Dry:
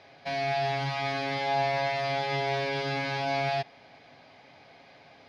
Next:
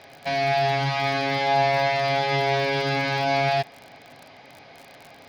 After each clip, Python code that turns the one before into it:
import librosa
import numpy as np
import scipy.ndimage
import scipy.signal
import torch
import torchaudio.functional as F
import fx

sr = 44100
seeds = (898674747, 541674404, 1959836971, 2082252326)

y = fx.dmg_crackle(x, sr, seeds[0], per_s=50.0, level_db=-39.0)
y = y * librosa.db_to_amplitude(6.5)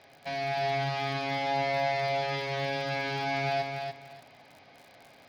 y = fx.echo_feedback(x, sr, ms=290, feedback_pct=20, wet_db=-5.0)
y = y * librosa.db_to_amplitude(-9.0)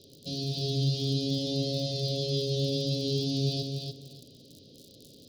y = scipy.signal.sosfilt(scipy.signal.cheby2(4, 40, [740.0, 2300.0], 'bandstop', fs=sr, output='sos'), x)
y = y * librosa.db_to_amplitude(8.5)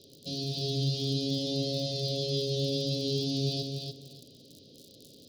y = fx.low_shelf(x, sr, hz=140.0, db=-5.0)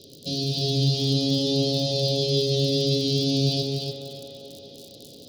y = fx.echo_wet_bandpass(x, sr, ms=192, feedback_pct=74, hz=1100.0, wet_db=-3.0)
y = y * librosa.db_to_amplitude(7.5)